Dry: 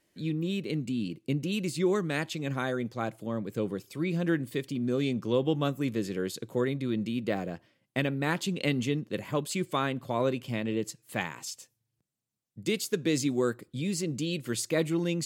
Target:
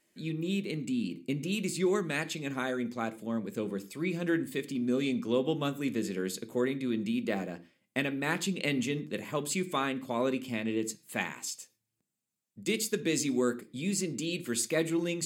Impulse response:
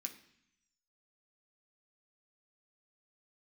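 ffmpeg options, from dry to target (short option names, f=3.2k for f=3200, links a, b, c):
-filter_complex "[0:a]bandreject=f=5.6k:w=23,asplit=2[a][b];[1:a]atrim=start_sample=2205,atrim=end_sample=6174[c];[b][c]afir=irnorm=-1:irlink=0,volume=2dB[d];[a][d]amix=inputs=2:normalize=0,volume=-4.5dB"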